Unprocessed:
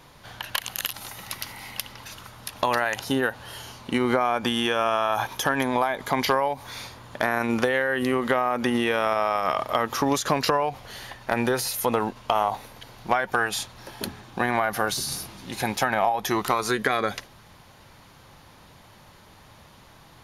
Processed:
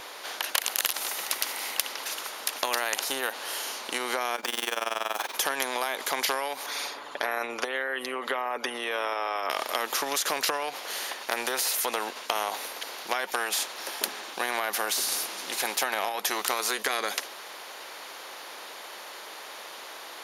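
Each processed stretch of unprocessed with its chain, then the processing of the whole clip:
4.35–5.35 median filter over 5 samples + AM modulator 21 Hz, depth 75%
6.66–9.5 formant sharpening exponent 1.5 + comb 7 ms, depth 47%
whole clip: HPF 420 Hz 24 dB/oct; spectral compressor 2:1

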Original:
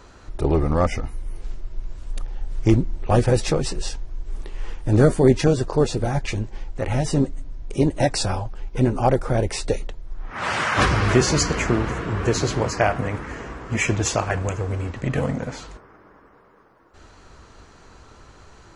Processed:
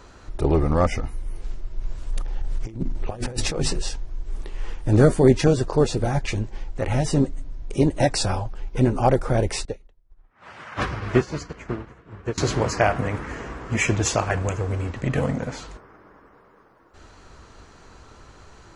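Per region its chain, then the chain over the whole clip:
1.81–3.78 notches 50/100/150/200/250/300/350 Hz + negative-ratio compressor -23 dBFS, ratio -0.5
9.65–12.38 LPF 3600 Hz 6 dB/oct + upward expander 2.5:1, over -32 dBFS
whole clip: dry

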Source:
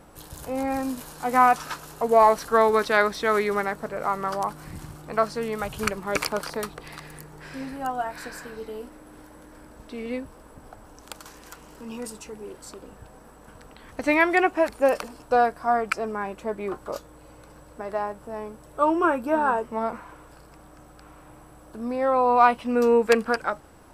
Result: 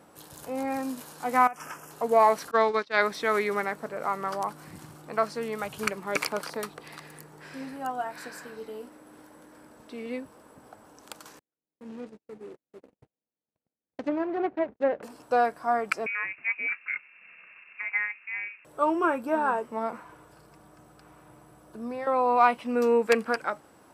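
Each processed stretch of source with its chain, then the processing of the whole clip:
1.47–1.91 Butterworth band-stop 4000 Hz, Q 1.7 + compressor 10:1, threshold -30 dBFS
2.51–3.02 synth low-pass 4700 Hz, resonance Q 1.8 + expander -17 dBFS
11.39–15.03 median filter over 41 samples + gate -44 dBFS, range -41 dB + treble ducked by the level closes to 1500 Hz, closed at -22 dBFS
16.06–18.65 transient shaper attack 0 dB, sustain -5 dB + inverted band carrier 2700 Hz
20.03–22.07 low shelf 110 Hz +10.5 dB + notch comb 270 Hz
whole clip: HPF 150 Hz 12 dB/oct; dynamic EQ 2200 Hz, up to +4 dB, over -41 dBFS, Q 3.3; gain -3.5 dB

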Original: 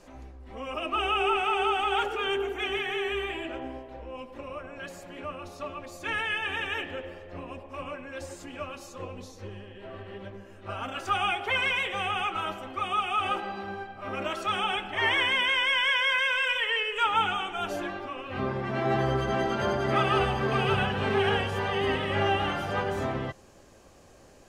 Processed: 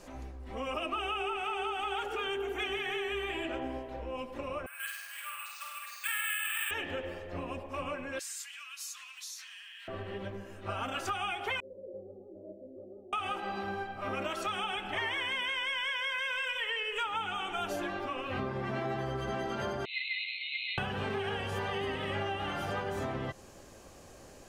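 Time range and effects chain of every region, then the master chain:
4.66–6.71 HPF 1400 Hz 24 dB/oct + flutter echo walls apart 8.7 m, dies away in 1.1 s + careless resampling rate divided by 4×, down filtered, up hold
8.19–9.88 inverse Chebyshev high-pass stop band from 430 Hz, stop band 60 dB + compressor 3:1, threshold -52 dBFS + high shelf 2600 Hz +11 dB
11.6–13.13 rippled Chebyshev low-pass 600 Hz, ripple 3 dB + tilt +4.5 dB/oct + comb 3.4 ms, depth 43%
19.85–20.78 sample-rate reducer 3300 Hz + brick-wall FIR band-pass 2000–4300 Hz
whole clip: compressor 10:1, threshold -33 dBFS; high shelf 7600 Hz +5.5 dB; gain +1.5 dB

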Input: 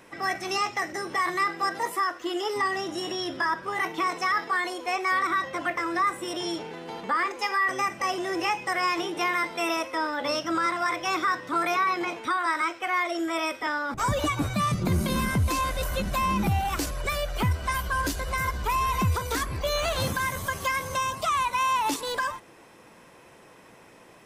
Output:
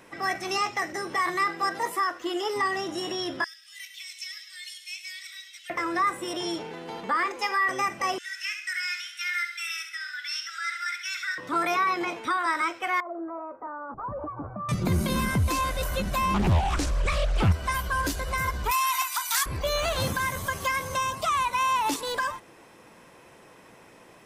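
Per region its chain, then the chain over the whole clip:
3.44–5.7 inverse Chebyshev high-pass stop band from 1100 Hz, stop band 50 dB + feedback echo 0.104 s, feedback 60%, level -10.5 dB
8.18–11.38 rippled Chebyshev high-pass 1400 Hz, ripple 3 dB + flutter echo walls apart 11.7 m, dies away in 0.52 s
13–14.69 low shelf 400 Hz -10.5 dB + compressor 3:1, threshold -29 dBFS + steep low-pass 1200 Hz
16.34–17.52 LPF 9400 Hz 24 dB/oct + low shelf 85 Hz +10 dB + Doppler distortion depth 0.87 ms
18.71–19.46 steep high-pass 720 Hz 72 dB/oct + tilt +3 dB/oct
whole clip: dry

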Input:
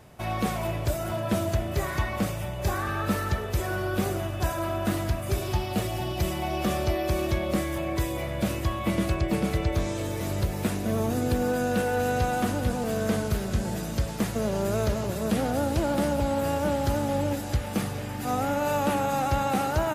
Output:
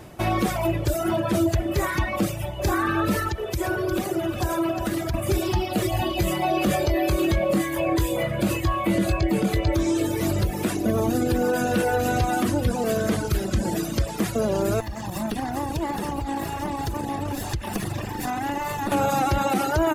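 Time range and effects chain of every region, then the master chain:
3.29–5.14 compressor 5:1, threshold -28 dBFS + notches 50/100/150/200/250/300/350/400 Hz + echo 0.356 s -7.5 dB
5.9–9.75 notch 5500 Hz, Q 9.5 + doubler 20 ms -4 dB
14.8–18.92 minimum comb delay 1.1 ms + compressor 16:1, threshold -29 dBFS
whole clip: reverb removal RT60 1.5 s; bell 330 Hz +10 dB 0.24 oct; limiter -21.5 dBFS; gain +8 dB

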